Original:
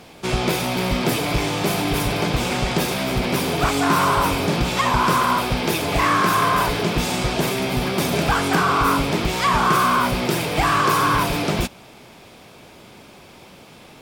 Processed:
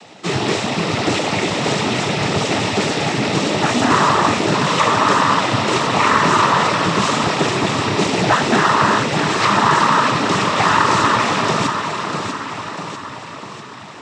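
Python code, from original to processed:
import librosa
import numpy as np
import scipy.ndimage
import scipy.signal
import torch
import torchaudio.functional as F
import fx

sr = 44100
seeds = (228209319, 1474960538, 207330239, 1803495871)

y = fx.low_shelf(x, sr, hz=180.0, db=-4.0)
y = fx.echo_feedback(y, sr, ms=645, feedback_pct=56, wet_db=-6.5)
y = fx.noise_vocoder(y, sr, seeds[0], bands=12)
y = y * librosa.db_to_amplitude(4.0)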